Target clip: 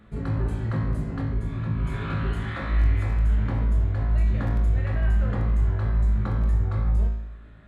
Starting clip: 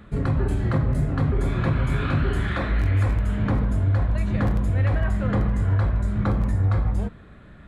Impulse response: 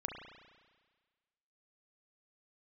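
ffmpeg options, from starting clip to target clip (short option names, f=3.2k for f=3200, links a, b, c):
-filter_complex "[0:a]asettb=1/sr,asplit=3[a][b][c];[a]atrim=end=1.214[d];[b]atrim=start=1.21:end=1.86,asetpts=PTS-STARTPTS,afade=t=in:d=0.004:c=qsin,afade=t=out:st=0.646:d=0.004:c=qsin,acrossover=split=270[e][f];[f]acompressor=threshold=-35dB:ratio=6[g];[e][g]amix=inputs=2:normalize=0[h];[c]atrim=start=1.856[i];[d][h]acrossfade=d=0.004:c1=hsin:c2=qsin[j];[j][i]acrossfade=d=0.004:c1=qsin:c2=hsin[k];[1:a]atrim=start_sample=2205,asetrate=79380,aresample=44100[l];[k][l]afir=irnorm=-1:irlink=0"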